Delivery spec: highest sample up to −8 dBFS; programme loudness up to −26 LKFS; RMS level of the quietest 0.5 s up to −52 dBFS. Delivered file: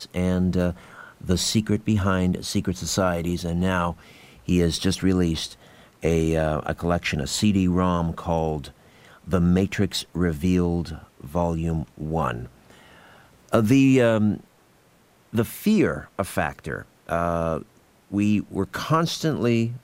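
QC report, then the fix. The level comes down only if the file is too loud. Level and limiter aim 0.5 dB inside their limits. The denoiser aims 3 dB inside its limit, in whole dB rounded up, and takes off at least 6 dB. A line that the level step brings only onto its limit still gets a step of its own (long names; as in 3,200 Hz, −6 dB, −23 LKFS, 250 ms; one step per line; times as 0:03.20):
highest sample −4.5 dBFS: out of spec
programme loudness −23.5 LKFS: out of spec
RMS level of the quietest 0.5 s −58 dBFS: in spec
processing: level −3 dB
brickwall limiter −8.5 dBFS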